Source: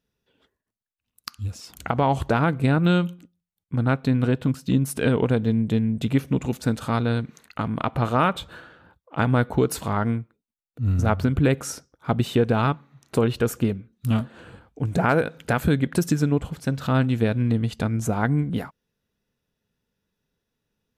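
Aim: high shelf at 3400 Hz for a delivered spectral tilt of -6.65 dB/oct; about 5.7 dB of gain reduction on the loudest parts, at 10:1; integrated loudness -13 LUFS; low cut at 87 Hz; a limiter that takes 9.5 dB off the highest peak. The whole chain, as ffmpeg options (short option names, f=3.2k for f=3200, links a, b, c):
-af "highpass=87,highshelf=f=3.4k:g=-5,acompressor=threshold=-21dB:ratio=10,volume=18.5dB,alimiter=limit=-2dB:level=0:latency=1"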